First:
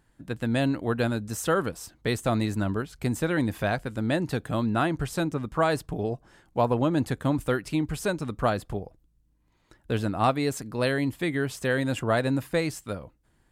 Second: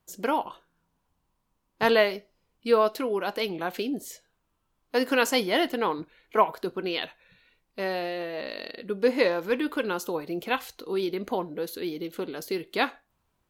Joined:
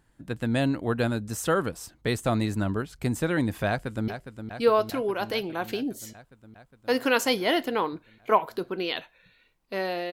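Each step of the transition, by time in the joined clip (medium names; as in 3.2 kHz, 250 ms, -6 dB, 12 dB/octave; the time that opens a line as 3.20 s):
first
3.68–4.08 s: echo throw 410 ms, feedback 75%, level -9 dB
4.08 s: go over to second from 2.14 s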